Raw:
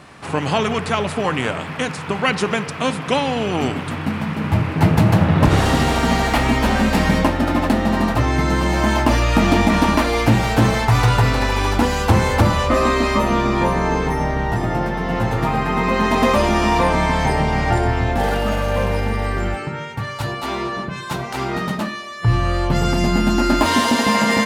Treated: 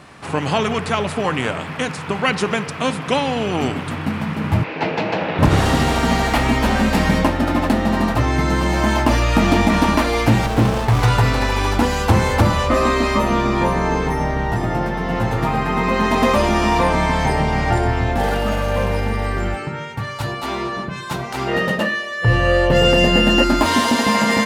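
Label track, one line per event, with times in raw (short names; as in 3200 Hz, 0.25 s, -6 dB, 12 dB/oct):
4.640000	5.390000	speaker cabinet 370–5200 Hz, peaks and dips at 480 Hz +5 dB, 1200 Hz -5 dB, 2500 Hz +5 dB
10.460000	11.030000	running maximum over 17 samples
21.470000	23.440000	small resonant body resonances 520/1800/2800 Hz, height 17 dB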